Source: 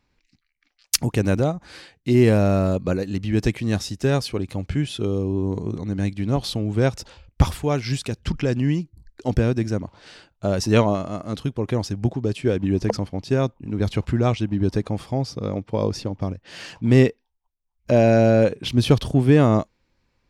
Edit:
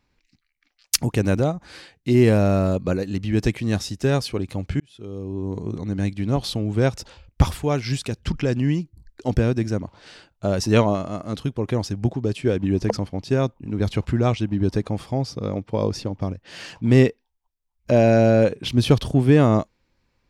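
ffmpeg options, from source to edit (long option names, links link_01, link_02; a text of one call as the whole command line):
ffmpeg -i in.wav -filter_complex "[0:a]asplit=2[link_01][link_02];[link_01]atrim=end=4.8,asetpts=PTS-STARTPTS,afade=type=out:start_time=4.796:duration=0.004:curve=hsin[link_03];[link_02]atrim=start=4.8,asetpts=PTS-STARTPTS,afade=type=in:duration=1.03[link_04];[link_03][link_04]concat=n=2:v=0:a=1" out.wav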